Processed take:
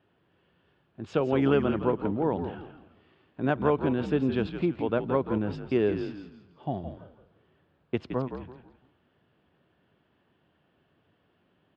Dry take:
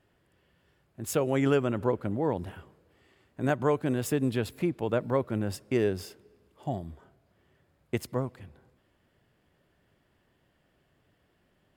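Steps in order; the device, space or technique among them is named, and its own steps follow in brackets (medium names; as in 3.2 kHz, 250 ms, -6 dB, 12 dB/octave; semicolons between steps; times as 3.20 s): frequency-shifting delay pedal into a guitar cabinet (frequency-shifting echo 167 ms, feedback 34%, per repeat -61 Hz, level -8.5 dB; cabinet simulation 100–3600 Hz, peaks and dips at 120 Hz -3 dB, 570 Hz -3 dB, 2 kHz -7 dB); trim +2 dB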